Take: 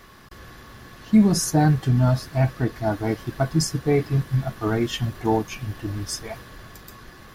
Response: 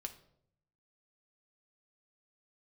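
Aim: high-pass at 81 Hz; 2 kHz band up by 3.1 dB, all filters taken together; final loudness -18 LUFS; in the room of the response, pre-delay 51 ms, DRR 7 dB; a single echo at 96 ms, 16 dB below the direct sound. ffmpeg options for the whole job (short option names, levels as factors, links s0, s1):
-filter_complex "[0:a]highpass=81,equalizer=f=2000:t=o:g=4,aecho=1:1:96:0.158,asplit=2[s0][s1];[1:a]atrim=start_sample=2205,adelay=51[s2];[s1][s2]afir=irnorm=-1:irlink=0,volume=0.631[s3];[s0][s3]amix=inputs=2:normalize=0,volume=1.58"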